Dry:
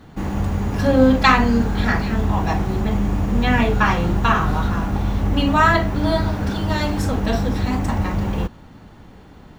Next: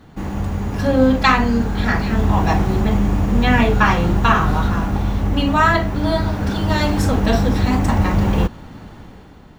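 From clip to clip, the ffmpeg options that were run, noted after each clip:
ffmpeg -i in.wav -af "dynaudnorm=framelen=200:gausssize=7:maxgain=9.5dB,volume=-1dB" out.wav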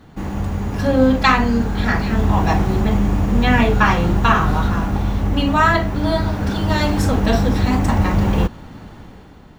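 ffmpeg -i in.wav -af anull out.wav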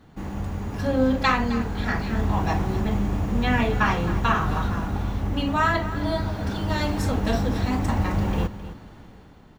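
ffmpeg -i in.wav -af "aecho=1:1:263:0.2,volume=-7dB" out.wav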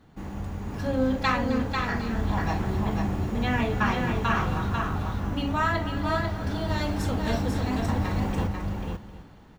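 ffmpeg -i in.wav -af "aecho=1:1:494:0.596,volume=-4dB" out.wav

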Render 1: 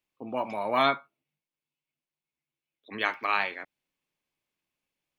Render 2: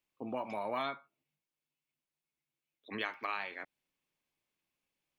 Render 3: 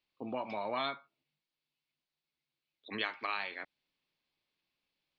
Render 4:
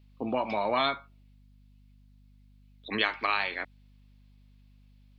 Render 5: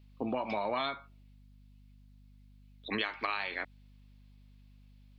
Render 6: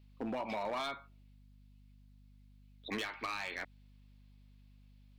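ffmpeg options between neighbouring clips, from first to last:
ffmpeg -i in.wav -af "acompressor=threshold=-33dB:ratio=4,volume=-1.5dB" out.wav
ffmpeg -i in.wav -af "highshelf=frequency=6100:width_type=q:width=3:gain=-13" out.wav
ffmpeg -i in.wav -af "aeval=exprs='val(0)+0.000562*(sin(2*PI*50*n/s)+sin(2*PI*2*50*n/s)/2+sin(2*PI*3*50*n/s)/3+sin(2*PI*4*50*n/s)/4+sin(2*PI*5*50*n/s)/5)':channel_layout=same,volume=8.5dB" out.wav
ffmpeg -i in.wav -af "acompressor=threshold=-30dB:ratio=4" out.wav
ffmpeg -i in.wav -af "asoftclip=type=hard:threshold=-29.5dB,volume=-2.5dB" out.wav

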